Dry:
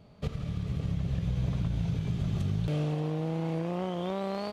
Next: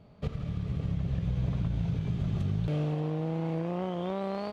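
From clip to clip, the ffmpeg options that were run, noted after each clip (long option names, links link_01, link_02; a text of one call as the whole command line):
ffmpeg -i in.wav -af "highshelf=frequency=4600:gain=-10" out.wav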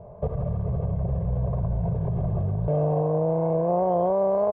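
ffmpeg -i in.wav -af "aecho=1:1:1.9:0.8,alimiter=level_in=2.5dB:limit=-24dB:level=0:latency=1:release=35,volume=-2.5dB,lowpass=frequency=770:width_type=q:width=6,volume=7dB" out.wav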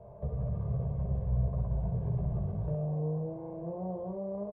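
ffmpeg -i in.wav -filter_complex "[0:a]acrossover=split=330[link_01][link_02];[link_02]acompressor=threshold=-39dB:ratio=5[link_03];[link_01][link_03]amix=inputs=2:normalize=0,asplit=2[link_04][link_05];[link_05]aecho=0:1:15|65:0.668|0.631[link_06];[link_04][link_06]amix=inputs=2:normalize=0,volume=-8.5dB" out.wav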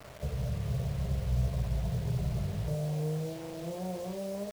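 ffmpeg -i in.wav -af "acrusher=bits=7:mix=0:aa=0.000001" out.wav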